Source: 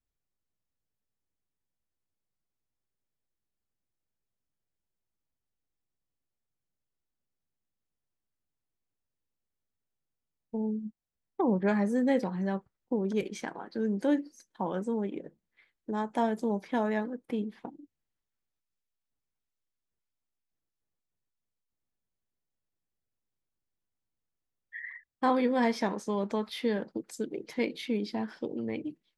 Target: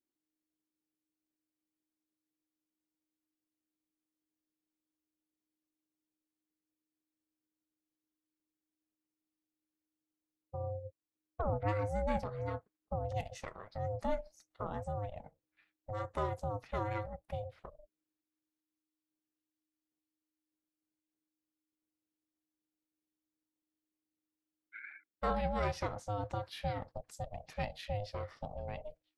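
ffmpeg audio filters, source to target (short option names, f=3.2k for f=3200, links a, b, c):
-af "aeval=exprs='0.178*(cos(1*acos(clip(val(0)/0.178,-1,1)))-cos(1*PI/2))+0.00398*(cos(4*acos(clip(val(0)/0.178,-1,1)))-cos(4*PI/2))':c=same,aeval=exprs='val(0)*sin(2*PI*310*n/s)':c=same,volume=-4.5dB"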